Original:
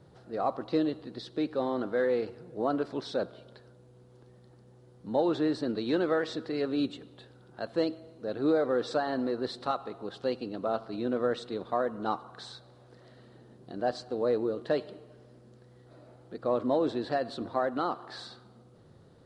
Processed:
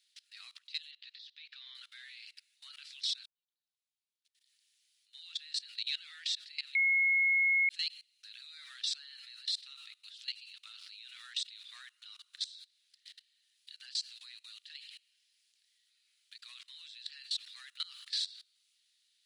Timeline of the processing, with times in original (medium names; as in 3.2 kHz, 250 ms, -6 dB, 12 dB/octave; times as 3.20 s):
0.91–1.75 s: distance through air 190 m
3.26–5.57 s: fade in quadratic
6.75–7.69 s: bleep 2.17 kHz -9.5 dBFS
17.49–18.13 s: tilt EQ +1.5 dB/octave
whole clip: steep high-pass 2.4 kHz 36 dB/octave; level held to a coarse grid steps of 23 dB; peak limiter -42 dBFS; trim +17.5 dB